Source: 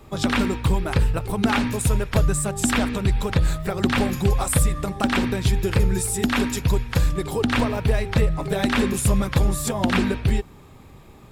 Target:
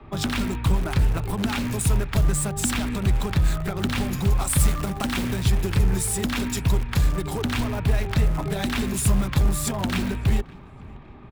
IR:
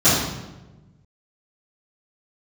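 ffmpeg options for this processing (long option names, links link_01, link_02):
-filter_complex "[0:a]equalizer=frequency=500:width_type=o:width=0.28:gain=-8.5,acrossover=split=180|3000[link_01][link_02][link_03];[link_02]acompressor=threshold=-28dB:ratio=6[link_04];[link_01][link_04][link_03]amix=inputs=3:normalize=0,asplit=2[link_05][link_06];[link_06]aeval=exprs='(mod(13.3*val(0)+1,2)-1)/13.3':channel_layout=same,volume=-10.5dB[link_07];[link_05][link_07]amix=inputs=2:normalize=0,asettb=1/sr,asplit=3[link_08][link_09][link_10];[link_08]atrim=end=4.594[link_11];[link_09]atrim=start=4.59:end=5.44,asetpts=PTS-STARTPTS,afade=type=in:duration=0.004:curve=qsin,afade=type=out:start_time=0.846:duration=0.004:curve=qsin,acrusher=bits=3:mode=log:mix=0:aa=0.000001[link_12];[link_10]atrim=start=5.436[link_13];[link_11][link_12]acrossfade=duration=0.004:curve1=hsin:curve2=qsin[link_14];[link_14][link_13]acrossfade=duration=0.004:curve1=qsin:curve2=hsin,acrossover=split=160|3200[link_15][link_16][link_17];[link_17]aeval=exprs='sgn(val(0))*max(abs(val(0))-0.00501,0)':channel_layout=same[link_18];[link_15][link_16][link_18]amix=inputs=3:normalize=0,asplit=2[link_19][link_20];[link_20]adelay=562,lowpass=frequency=2900:poles=1,volume=-23dB,asplit=2[link_21][link_22];[link_22]adelay=562,lowpass=frequency=2900:poles=1,volume=0.52,asplit=2[link_23][link_24];[link_24]adelay=562,lowpass=frequency=2900:poles=1,volume=0.52[link_25];[link_19][link_21][link_23][link_25]amix=inputs=4:normalize=0"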